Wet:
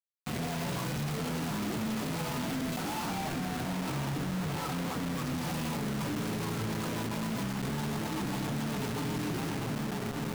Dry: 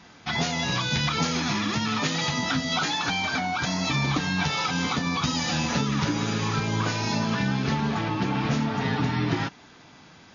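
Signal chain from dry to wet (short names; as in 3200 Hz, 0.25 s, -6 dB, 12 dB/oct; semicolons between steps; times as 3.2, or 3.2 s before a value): median filter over 25 samples; 3.07–5.16 LPF 1800 Hz 12 dB/oct; dark delay 1.173 s, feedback 55%, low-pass 920 Hz, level -13 dB; reverb RT60 1.3 s, pre-delay 46 ms, DRR 7.5 dB; rotary speaker horn 1.2 Hz, later 7.5 Hz, at 5.65; low shelf 70 Hz -10.5 dB; limiter -32.5 dBFS, peak gain reduction 17.5 dB; bit-crush 7-bit; gain +5.5 dB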